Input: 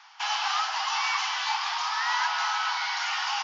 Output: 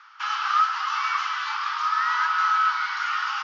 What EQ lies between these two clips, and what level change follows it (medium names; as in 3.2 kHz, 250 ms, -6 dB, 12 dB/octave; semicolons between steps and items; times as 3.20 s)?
ladder high-pass 1.2 kHz, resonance 75%; distance through air 70 m; +8.0 dB